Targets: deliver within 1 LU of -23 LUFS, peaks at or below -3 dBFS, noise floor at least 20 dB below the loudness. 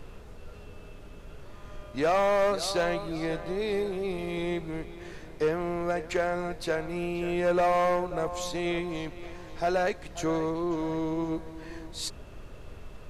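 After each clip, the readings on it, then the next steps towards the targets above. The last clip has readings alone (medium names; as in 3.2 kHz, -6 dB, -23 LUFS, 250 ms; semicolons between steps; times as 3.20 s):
clipped samples 1.3%; clipping level -20.0 dBFS; noise floor -46 dBFS; noise floor target -50 dBFS; loudness -29.5 LUFS; peak level -20.0 dBFS; loudness target -23.0 LUFS
-> clip repair -20 dBFS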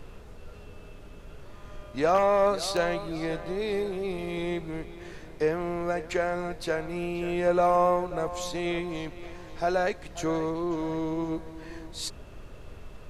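clipped samples 0.0%; noise floor -46 dBFS; noise floor target -49 dBFS
-> noise print and reduce 6 dB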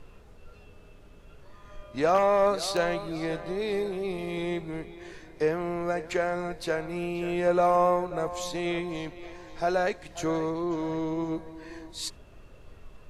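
noise floor -51 dBFS; loudness -28.5 LUFS; peak level -11.0 dBFS; loudness target -23.0 LUFS
-> trim +5.5 dB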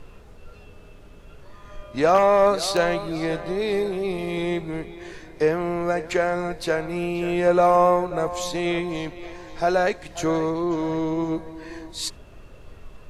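loudness -23.0 LUFS; peak level -5.5 dBFS; noise floor -46 dBFS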